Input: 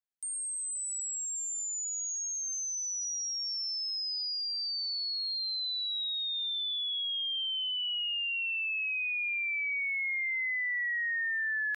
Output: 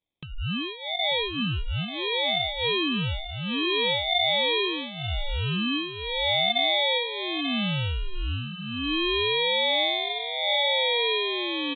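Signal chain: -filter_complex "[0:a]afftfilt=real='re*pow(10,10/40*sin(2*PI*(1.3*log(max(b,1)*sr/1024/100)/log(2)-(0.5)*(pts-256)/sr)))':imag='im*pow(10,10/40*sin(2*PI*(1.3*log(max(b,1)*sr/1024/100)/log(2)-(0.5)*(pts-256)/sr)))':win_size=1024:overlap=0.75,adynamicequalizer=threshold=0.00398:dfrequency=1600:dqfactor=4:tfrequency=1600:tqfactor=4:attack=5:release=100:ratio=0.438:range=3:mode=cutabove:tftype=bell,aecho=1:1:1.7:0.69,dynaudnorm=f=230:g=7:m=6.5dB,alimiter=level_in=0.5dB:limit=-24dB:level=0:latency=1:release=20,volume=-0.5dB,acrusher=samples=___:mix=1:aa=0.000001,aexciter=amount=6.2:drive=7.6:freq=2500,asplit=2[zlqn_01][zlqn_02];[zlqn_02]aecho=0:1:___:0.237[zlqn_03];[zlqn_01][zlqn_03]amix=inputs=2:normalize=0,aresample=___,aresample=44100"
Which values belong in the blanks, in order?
31, 889, 8000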